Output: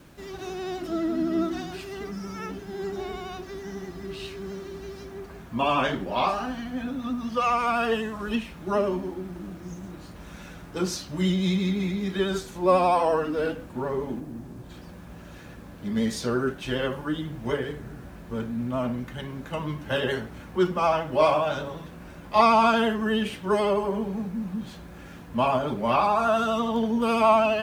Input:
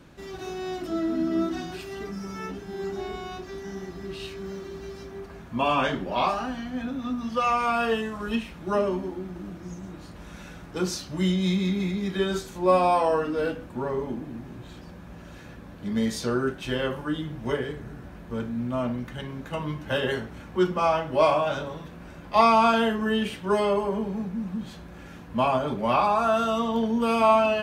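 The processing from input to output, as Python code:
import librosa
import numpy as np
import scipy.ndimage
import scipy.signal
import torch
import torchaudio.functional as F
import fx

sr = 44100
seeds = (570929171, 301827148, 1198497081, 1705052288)

y = fx.lowpass(x, sr, hz=1000.0, slope=6, at=(14.19, 14.69), fade=0.02)
y = fx.quant_dither(y, sr, seeds[0], bits=10, dither='none')
y = fx.vibrato(y, sr, rate_hz=12.0, depth_cents=44.0)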